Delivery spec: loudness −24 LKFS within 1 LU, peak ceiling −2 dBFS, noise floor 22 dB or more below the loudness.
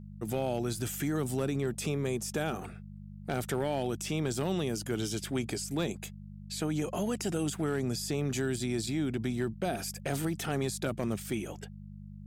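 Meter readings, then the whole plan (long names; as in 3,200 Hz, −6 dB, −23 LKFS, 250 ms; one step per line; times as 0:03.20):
share of clipped samples 0.3%; peaks flattened at −22.0 dBFS; mains hum 50 Hz; hum harmonics up to 200 Hz; level of the hum −44 dBFS; integrated loudness −33.5 LKFS; sample peak −22.0 dBFS; target loudness −24.0 LKFS
→ clipped peaks rebuilt −22 dBFS
hum removal 50 Hz, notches 4
level +9.5 dB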